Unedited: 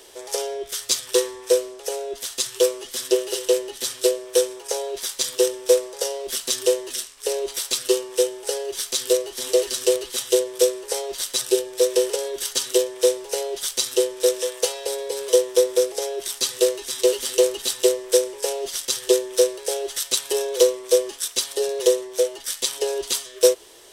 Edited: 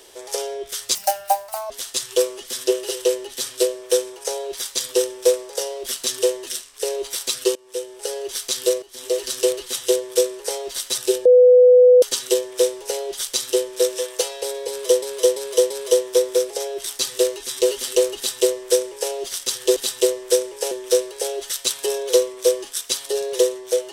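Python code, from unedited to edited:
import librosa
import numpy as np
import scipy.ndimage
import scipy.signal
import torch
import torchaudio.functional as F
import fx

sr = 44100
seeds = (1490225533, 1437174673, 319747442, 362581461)

y = fx.edit(x, sr, fx.speed_span(start_s=0.95, length_s=1.19, speed=1.58),
    fx.fade_in_from(start_s=7.99, length_s=0.65, floor_db=-23.5),
    fx.fade_in_from(start_s=9.26, length_s=0.5, floor_db=-16.0),
    fx.bleep(start_s=11.69, length_s=0.77, hz=498.0, db=-7.0),
    fx.repeat(start_s=15.12, length_s=0.34, count=4),
    fx.duplicate(start_s=17.58, length_s=0.95, to_s=19.18), tone=tone)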